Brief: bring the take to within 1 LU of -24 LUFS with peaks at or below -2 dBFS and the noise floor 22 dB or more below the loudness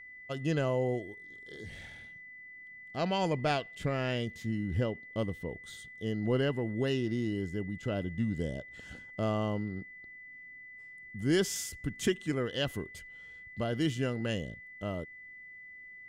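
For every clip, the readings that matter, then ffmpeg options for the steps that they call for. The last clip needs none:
steady tone 2000 Hz; tone level -47 dBFS; loudness -33.5 LUFS; peak -16.5 dBFS; loudness target -24.0 LUFS
-> -af "bandreject=f=2k:w=30"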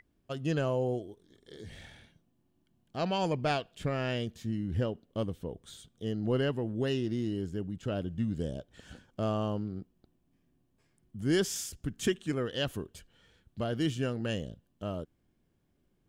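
steady tone none; loudness -33.5 LUFS; peak -16.5 dBFS; loudness target -24.0 LUFS
-> -af "volume=9.5dB"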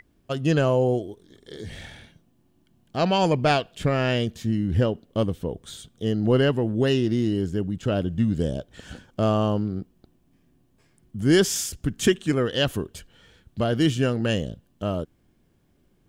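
loudness -24.0 LUFS; peak -7.0 dBFS; noise floor -64 dBFS

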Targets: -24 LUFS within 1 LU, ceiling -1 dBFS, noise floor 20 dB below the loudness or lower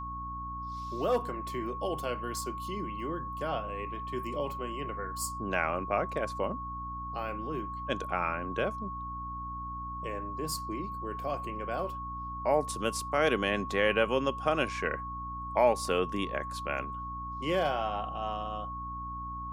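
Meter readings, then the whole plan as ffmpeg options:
hum 60 Hz; harmonics up to 300 Hz; hum level -41 dBFS; steady tone 1100 Hz; tone level -37 dBFS; loudness -33.0 LUFS; peak -11.5 dBFS; loudness target -24.0 LUFS
-> -af "bandreject=f=60:t=h:w=6,bandreject=f=120:t=h:w=6,bandreject=f=180:t=h:w=6,bandreject=f=240:t=h:w=6,bandreject=f=300:t=h:w=6"
-af "bandreject=f=1.1k:w=30"
-af "volume=9dB"

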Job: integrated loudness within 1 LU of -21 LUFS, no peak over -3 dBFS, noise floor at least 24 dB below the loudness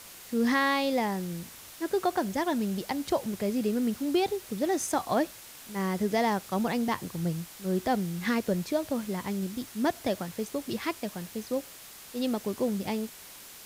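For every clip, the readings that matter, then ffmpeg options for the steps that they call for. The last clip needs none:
noise floor -48 dBFS; noise floor target -54 dBFS; loudness -30.0 LUFS; peak -15.5 dBFS; loudness target -21.0 LUFS
-> -af "afftdn=nr=6:nf=-48"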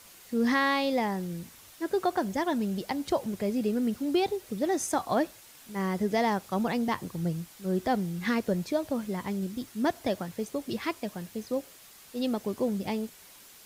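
noise floor -53 dBFS; noise floor target -55 dBFS
-> -af "afftdn=nr=6:nf=-53"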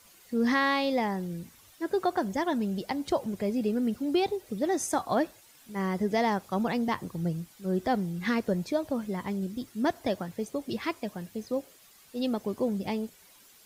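noise floor -57 dBFS; loudness -30.5 LUFS; peak -16.0 dBFS; loudness target -21.0 LUFS
-> -af "volume=9.5dB"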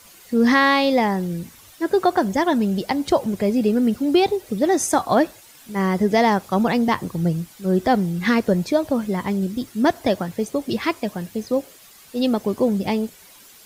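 loudness -21.0 LUFS; peak -6.5 dBFS; noise floor -48 dBFS

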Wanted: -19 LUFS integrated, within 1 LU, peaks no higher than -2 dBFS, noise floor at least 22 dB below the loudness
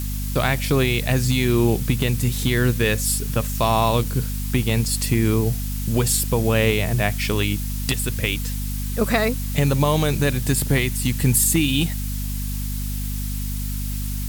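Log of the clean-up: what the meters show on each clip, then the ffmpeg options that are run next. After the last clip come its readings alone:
hum 50 Hz; harmonics up to 250 Hz; hum level -24 dBFS; noise floor -26 dBFS; noise floor target -44 dBFS; loudness -21.5 LUFS; peak -5.0 dBFS; loudness target -19.0 LUFS
-> -af "bandreject=f=50:t=h:w=4,bandreject=f=100:t=h:w=4,bandreject=f=150:t=h:w=4,bandreject=f=200:t=h:w=4,bandreject=f=250:t=h:w=4"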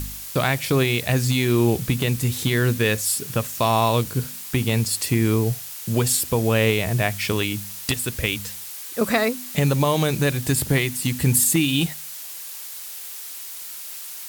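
hum none; noise floor -36 dBFS; noise floor target -44 dBFS
-> -af "afftdn=nr=8:nf=-36"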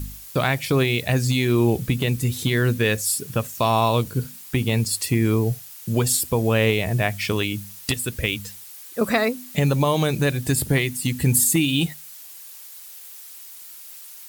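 noise floor -41 dBFS; noise floor target -44 dBFS
-> -af "afftdn=nr=6:nf=-41"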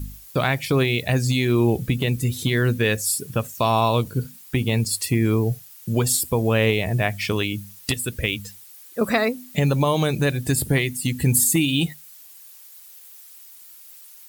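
noise floor -46 dBFS; loudness -22.0 LUFS; peak -6.0 dBFS; loudness target -19.0 LUFS
-> -af "volume=3dB"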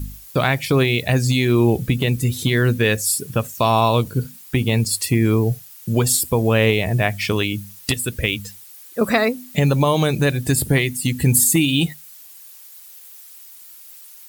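loudness -19.0 LUFS; peak -3.0 dBFS; noise floor -43 dBFS

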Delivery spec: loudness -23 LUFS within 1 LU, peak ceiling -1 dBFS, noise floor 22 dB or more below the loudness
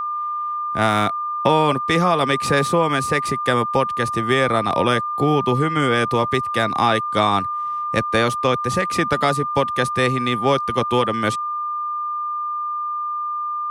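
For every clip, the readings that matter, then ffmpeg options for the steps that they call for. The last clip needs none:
steady tone 1200 Hz; tone level -22 dBFS; loudness -20.0 LUFS; peak -4.0 dBFS; loudness target -23.0 LUFS
-> -af "bandreject=f=1.2k:w=30"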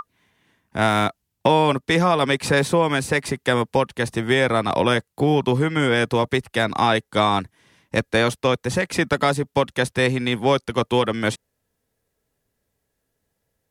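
steady tone none; loudness -20.5 LUFS; peak -4.5 dBFS; loudness target -23.0 LUFS
-> -af "volume=-2.5dB"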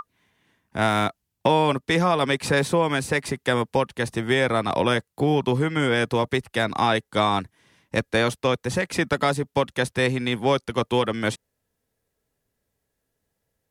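loudness -23.0 LUFS; peak -7.0 dBFS; noise floor -79 dBFS

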